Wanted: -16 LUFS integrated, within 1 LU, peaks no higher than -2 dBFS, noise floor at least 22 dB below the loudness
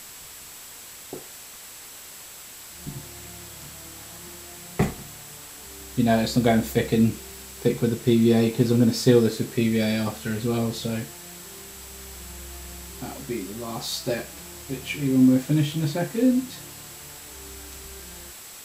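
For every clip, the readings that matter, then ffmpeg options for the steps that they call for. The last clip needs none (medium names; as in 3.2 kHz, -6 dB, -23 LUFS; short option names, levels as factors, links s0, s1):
steady tone 7.7 kHz; tone level -47 dBFS; noise floor -43 dBFS; noise floor target -46 dBFS; loudness -23.5 LUFS; peak level -5.0 dBFS; loudness target -16.0 LUFS
-> -af "bandreject=f=7700:w=30"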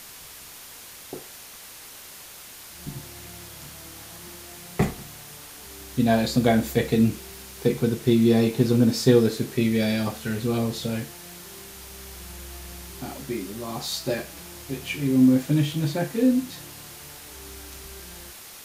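steady tone not found; noise floor -44 dBFS; noise floor target -46 dBFS
-> -af "afftdn=nr=6:nf=-44"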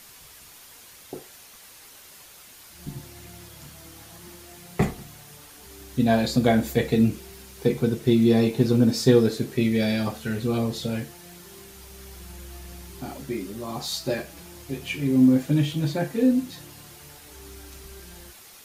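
noise floor -48 dBFS; loudness -23.5 LUFS; peak level -5.0 dBFS; loudness target -16.0 LUFS
-> -af "volume=2.37,alimiter=limit=0.794:level=0:latency=1"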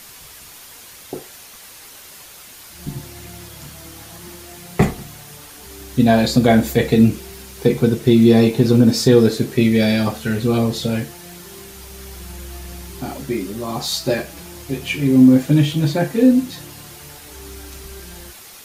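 loudness -16.5 LUFS; peak level -2.0 dBFS; noise floor -41 dBFS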